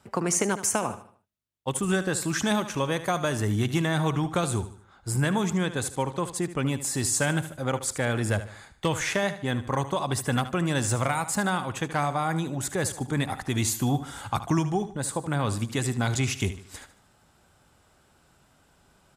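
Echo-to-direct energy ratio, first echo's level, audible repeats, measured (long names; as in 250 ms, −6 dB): −12.0 dB, −13.0 dB, 3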